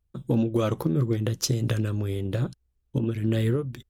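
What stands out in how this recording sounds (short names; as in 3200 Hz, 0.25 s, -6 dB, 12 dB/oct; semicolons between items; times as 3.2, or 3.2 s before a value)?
noise floor -73 dBFS; spectral tilt -6.5 dB/oct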